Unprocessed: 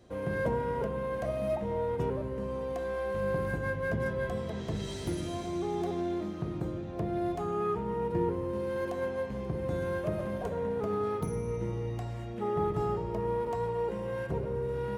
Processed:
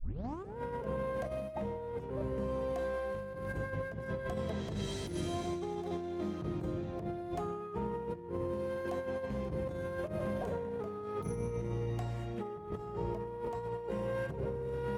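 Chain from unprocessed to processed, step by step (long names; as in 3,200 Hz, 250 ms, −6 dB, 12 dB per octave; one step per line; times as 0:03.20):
turntable start at the beginning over 0.57 s
compressor whose output falls as the input rises −34 dBFS, ratio −0.5
level −2.5 dB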